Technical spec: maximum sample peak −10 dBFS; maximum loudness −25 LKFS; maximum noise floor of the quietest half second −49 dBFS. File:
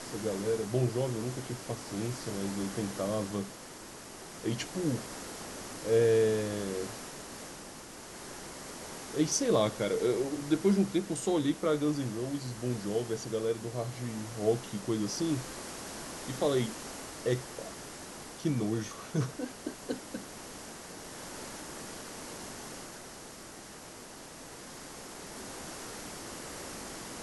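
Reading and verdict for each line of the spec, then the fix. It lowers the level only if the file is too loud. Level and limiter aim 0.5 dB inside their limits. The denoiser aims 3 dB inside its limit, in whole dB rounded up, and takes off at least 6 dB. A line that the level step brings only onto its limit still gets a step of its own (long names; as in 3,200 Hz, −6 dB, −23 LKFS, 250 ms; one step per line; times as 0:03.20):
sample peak −14.5 dBFS: in spec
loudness −34.0 LKFS: in spec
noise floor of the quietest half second −48 dBFS: out of spec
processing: broadband denoise 6 dB, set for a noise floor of −48 dBFS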